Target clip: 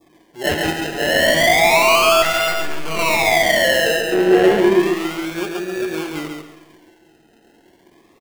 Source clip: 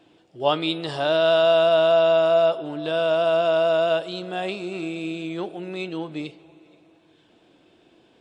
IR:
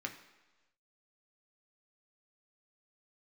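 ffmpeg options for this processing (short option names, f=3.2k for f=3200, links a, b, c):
-filter_complex "[0:a]acrusher=samples=30:mix=1:aa=0.000001:lfo=1:lforange=18:lforate=0.31,asettb=1/sr,asplit=3[a][b][c];[a]atrim=end=4.124[d];[b]atrim=start=4.12:end=4.8,asetpts=PTS-STARTPTS,afade=t=in:d=0.004:c=qsin,afade=t=out:st=0.676:d=0.004:c=qsin,equalizer=f=390:t=o:w=2.9:g=14[e];[c]atrim=start=4.796[f];[d][e]acrossfade=d=0.004:c1=hsin:c2=qsin[g];[g][f]acrossfade=d=0.004:c1=qsin:c2=hsin,asoftclip=type=tanh:threshold=-14.5dB,aecho=1:1:137|274|411:0.631|0.158|0.0394,asettb=1/sr,asplit=3[h][i][j];[h]atrim=end=2.224[k];[i]atrim=start=2.22:end=2.99,asetpts=PTS-STARTPTS,afade=t=in:d=0.004:c=qsin,afade=t=out:st=0.766:d=0.004:c=qsin,aeval=exprs='max(val(0),0)':c=same[l];[j]atrim=start=2.986[m];[k][l]acrossfade=d=0.004:c1=hsin:c2=qsin[n];[n][m]acrossfade=d=0.004:c1=qsin:c2=hsin,adynamicequalizer=threshold=0.0141:dfrequency=2100:dqfactor=0.93:tfrequency=2100:tqfactor=0.93:attack=5:release=100:ratio=0.375:range=3:mode=boostabove:tftype=bell,asplit=2[o][p];[1:a]atrim=start_sample=2205,asetrate=57330,aresample=44100[q];[p][q]afir=irnorm=-1:irlink=0,volume=1dB[r];[o][r]amix=inputs=2:normalize=0,volume=-1dB"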